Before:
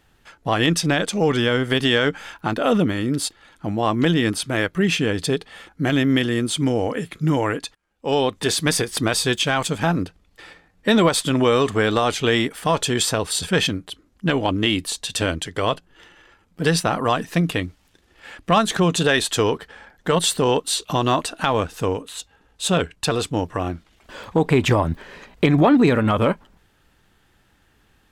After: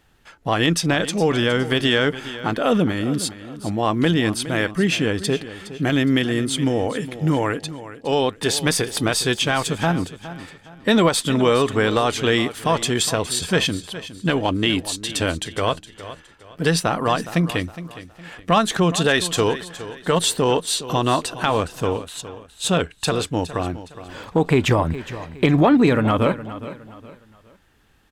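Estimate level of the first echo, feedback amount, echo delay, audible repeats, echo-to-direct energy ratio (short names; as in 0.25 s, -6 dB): -14.5 dB, 34%, 0.414 s, 3, -14.0 dB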